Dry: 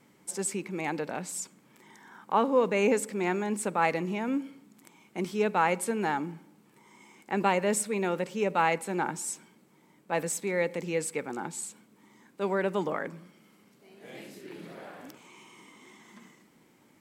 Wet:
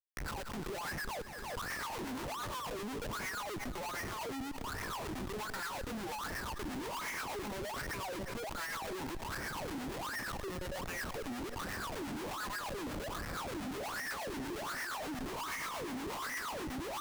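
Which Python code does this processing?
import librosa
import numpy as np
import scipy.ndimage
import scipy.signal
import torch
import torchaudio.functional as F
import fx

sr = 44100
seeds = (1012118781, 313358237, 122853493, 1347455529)

p1 = fx.pitch_trill(x, sr, semitones=1.0, every_ms=423)
p2 = fx.recorder_agc(p1, sr, target_db=-20.5, rise_db_per_s=54.0, max_gain_db=30)
p3 = fx.curve_eq(p2, sr, hz=(100.0, 230.0, 440.0, 1100.0, 5600.0, 7900.0, 14000.0), db=(0, -12, -7, 9, -7, 4, 1))
p4 = 10.0 ** (-28.0 / 20.0) * np.tanh(p3 / 10.0 ** (-28.0 / 20.0))
p5 = p3 + (p4 * 10.0 ** (-9.0 / 20.0))
p6 = fx.wah_lfo(p5, sr, hz=1.3, low_hz=250.0, high_hz=1900.0, q=16.0)
p7 = fx.schmitt(p6, sr, flips_db=-57.0)
p8 = fx.harmonic_tremolo(p7, sr, hz=8.4, depth_pct=50, crossover_hz=730.0)
p9 = p8 + fx.echo_heads(p8, sr, ms=174, heads='first and second', feedback_pct=41, wet_db=-19.0, dry=0)
p10 = fx.pre_swell(p9, sr, db_per_s=30.0)
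y = p10 * 10.0 ** (3.5 / 20.0)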